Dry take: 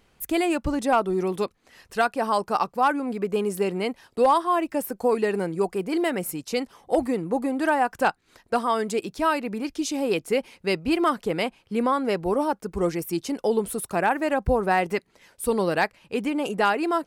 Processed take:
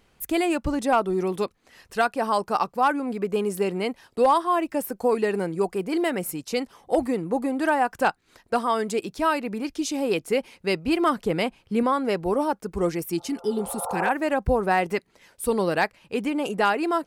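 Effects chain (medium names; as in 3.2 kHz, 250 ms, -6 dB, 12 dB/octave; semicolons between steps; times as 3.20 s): 11.05–11.83 s: bass shelf 210 Hz +6 dB; 13.19–14.07 s: spectral replace 450–1400 Hz both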